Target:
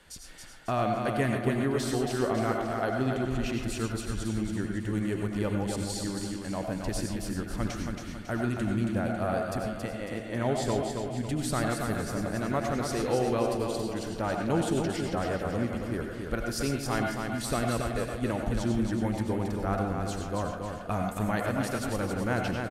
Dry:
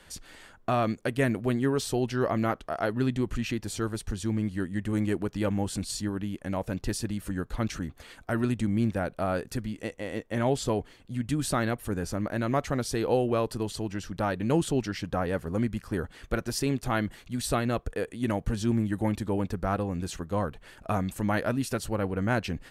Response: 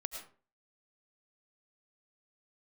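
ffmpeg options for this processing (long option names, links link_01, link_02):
-filter_complex "[0:a]aecho=1:1:275|550|825|1100|1375|1650:0.562|0.259|0.119|0.0547|0.0252|0.0116[link_01];[1:a]atrim=start_sample=2205,asetrate=48510,aresample=44100[link_02];[link_01][link_02]afir=irnorm=-1:irlink=0"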